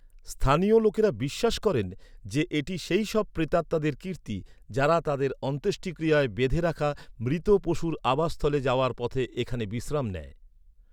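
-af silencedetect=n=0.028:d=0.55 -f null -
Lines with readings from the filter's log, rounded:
silence_start: 10.21
silence_end: 10.93 | silence_duration: 0.72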